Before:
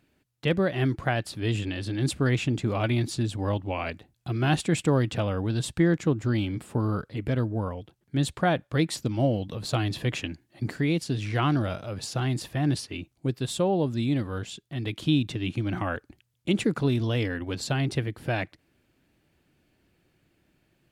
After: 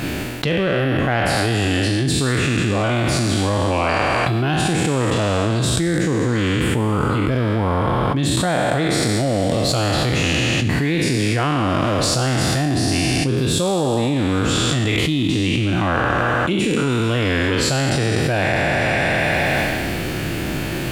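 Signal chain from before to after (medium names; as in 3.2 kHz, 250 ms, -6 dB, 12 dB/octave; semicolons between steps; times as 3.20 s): spectral sustain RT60 1.97 s; in parallel at -3.5 dB: saturation -16.5 dBFS, distortion -16 dB; on the sum: repeats whose band climbs or falls 162 ms, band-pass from 930 Hz, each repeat 0.7 oct, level -11 dB; level flattener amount 100%; trim -4 dB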